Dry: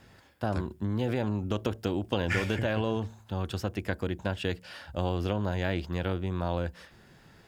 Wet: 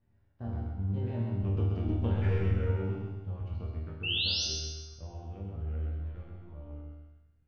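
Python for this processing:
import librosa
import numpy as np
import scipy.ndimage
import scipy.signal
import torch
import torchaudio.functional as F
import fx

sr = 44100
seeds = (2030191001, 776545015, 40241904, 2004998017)

y = fx.pitch_trill(x, sr, semitones=-2.0, every_ms=492)
y = fx.doppler_pass(y, sr, speed_mps=19, closest_m=13.0, pass_at_s=2.03)
y = fx.riaa(y, sr, side='playback')
y = fx.leveller(y, sr, passes=1)
y = fx.spec_paint(y, sr, seeds[0], shape='rise', start_s=4.03, length_s=0.42, low_hz=2600.0, high_hz=6400.0, level_db=-17.0)
y = fx.air_absorb(y, sr, metres=120.0)
y = fx.resonator_bank(y, sr, root=39, chord='major', decay_s=0.83)
y = fx.echo_feedback(y, sr, ms=130, feedback_pct=42, wet_db=-4)
y = y * librosa.db_to_amplitude(5.5)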